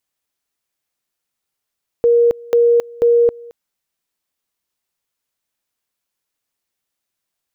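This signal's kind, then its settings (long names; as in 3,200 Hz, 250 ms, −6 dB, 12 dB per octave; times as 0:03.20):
tone at two levels in turn 472 Hz −8.5 dBFS, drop 24 dB, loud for 0.27 s, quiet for 0.22 s, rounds 3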